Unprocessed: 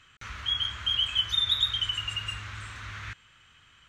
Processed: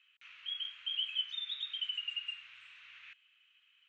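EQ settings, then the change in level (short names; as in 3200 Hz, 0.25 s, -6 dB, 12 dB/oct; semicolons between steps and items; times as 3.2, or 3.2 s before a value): band-pass 2700 Hz, Q 4.7; -4.5 dB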